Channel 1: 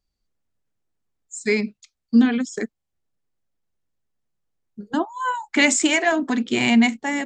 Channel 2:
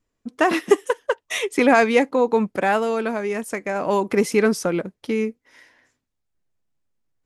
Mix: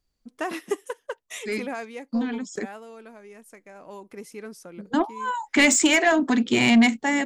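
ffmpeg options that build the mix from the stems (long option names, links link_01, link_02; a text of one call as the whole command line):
ffmpeg -i stem1.wav -i stem2.wav -filter_complex "[0:a]asoftclip=type=tanh:threshold=-10.5dB,acontrast=48,volume=-4dB[link_01];[1:a]highshelf=frequency=7500:gain=9,volume=-11.5dB,afade=type=out:start_time=1.16:duration=0.75:silence=0.334965,asplit=2[link_02][link_03];[link_03]apad=whole_len=319978[link_04];[link_01][link_04]sidechaincompress=threshold=-45dB:ratio=8:attack=22:release=390[link_05];[link_05][link_02]amix=inputs=2:normalize=0" out.wav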